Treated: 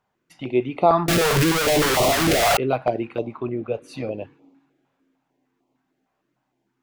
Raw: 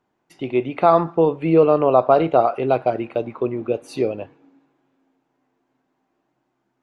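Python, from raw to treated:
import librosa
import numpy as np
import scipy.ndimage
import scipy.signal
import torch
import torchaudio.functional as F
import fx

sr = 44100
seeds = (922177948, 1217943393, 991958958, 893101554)

y = fx.clip_1bit(x, sr, at=(1.08, 2.57))
y = fx.high_shelf(y, sr, hz=3900.0, db=-6.5, at=(3.37, 4.14))
y = fx.filter_held_notch(y, sr, hz=6.6, low_hz=310.0, high_hz=1600.0)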